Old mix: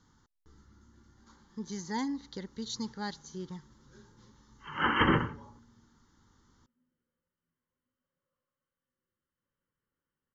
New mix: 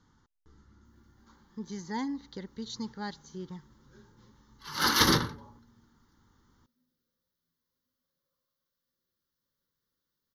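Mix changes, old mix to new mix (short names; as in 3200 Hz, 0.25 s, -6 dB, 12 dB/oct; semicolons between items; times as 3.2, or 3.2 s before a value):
speech: add air absorption 68 m; background: remove brick-wall FIR low-pass 3200 Hz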